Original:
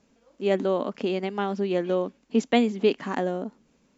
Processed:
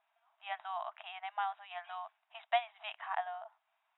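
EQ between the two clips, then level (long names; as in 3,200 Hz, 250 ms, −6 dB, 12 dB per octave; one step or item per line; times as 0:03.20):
linear-phase brick-wall band-pass 630–3,900 Hz
high-shelf EQ 2,000 Hz −9.5 dB
−2.5 dB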